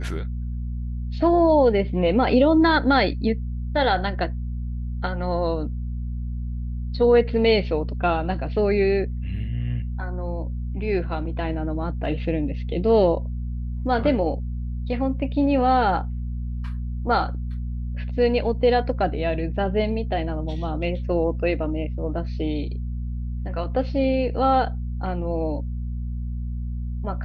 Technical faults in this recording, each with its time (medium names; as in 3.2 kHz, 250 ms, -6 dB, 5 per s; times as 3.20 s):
hum 60 Hz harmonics 4 -28 dBFS